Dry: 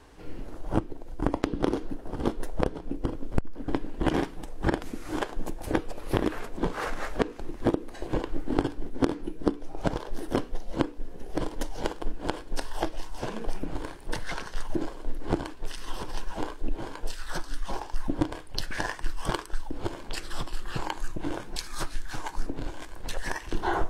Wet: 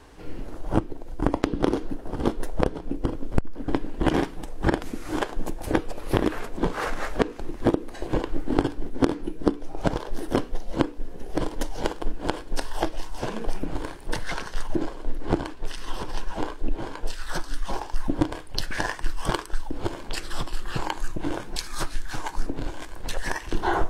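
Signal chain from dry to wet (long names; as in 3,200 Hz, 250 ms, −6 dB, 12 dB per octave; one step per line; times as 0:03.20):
0:14.67–0:17.21: high-shelf EQ 7,400 Hz −5 dB
level +3.5 dB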